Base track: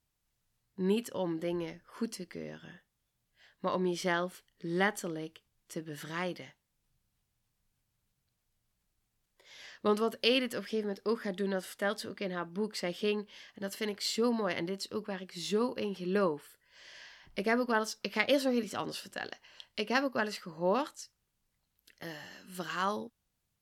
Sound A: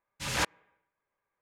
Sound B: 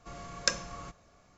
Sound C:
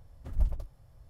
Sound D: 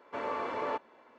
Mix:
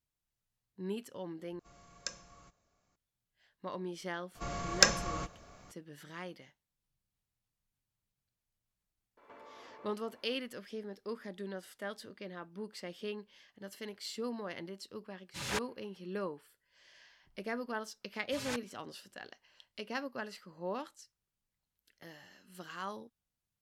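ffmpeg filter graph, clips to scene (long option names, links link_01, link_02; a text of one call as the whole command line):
ffmpeg -i bed.wav -i cue0.wav -i cue1.wav -i cue2.wav -i cue3.wav -filter_complex "[2:a]asplit=2[link_01][link_02];[1:a]asplit=2[link_03][link_04];[0:a]volume=-9dB[link_05];[link_01]crystalizer=i=1:c=0[link_06];[link_02]acontrast=43[link_07];[4:a]acompressor=threshold=-48dB:ratio=6:attack=3.2:release=140:knee=1:detection=peak[link_08];[link_03]highpass=58[link_09];[link_04]asplit=2[link_10][link_11];[link_11]adelay=4,afreqshift=2[link_12];[link_10][link_12]amix=inputs=2:normalize=1[link_13];[link_05]asplit=2[link_14][link_15];[link_14]atrim=end=1.594[link_16];[link_06]atrim=end=1.37,asetpts=PTS-STARTPTS,volume=-15.5dB[link_17];[link_15]atrim=start=2.956[link_18];[link_07]atrim=end=1.37,asetpts=PTS-STARTPTS,afade=type=in:duration=0.004:curve=hsin,afade=type=out:start_time=1.366:duration=0.004:curve=hsin,adelay=4350[link_19];[link_08]atrim=end=1.18,asetpts=PTS-STARTPTS,volume=-4dB,afade=type=in:duration=0.004:curve=hsin,afade=type=out:start_time=1.176:duration=0.004:curve=hsin,adelay=9170[link_20];[link_09]atrim=end=1.41,asetpts=PTS-STARTPTS,volume=-7dB,afade=type=in:duration=0.004:curve=hsin,afade=type=out:start_time=1.406:duration=0.004:curve=hsin,adelay=15140[link_21];[link_13]atrim=end=1.41,asetpts=PTS-STARTPTS,volume=-7.5dB,afade=type=in:duration=0.004:curve=hsin,afade=type=out:start_time=1.406:duration=0.004:curve=hsin,adelay=18110[link_22];[link_16][link_17]acrossfade=duration=0.004:curve1=hsin:curve2=hsin[link_23];[link_23][link_18]acrossfade=duration=0.004:curve1=hsin:curve2=hsin[link_24];[link_24][link_19][link_20][link_21][link_22]amix=inputs=5:normalize=0" out.wav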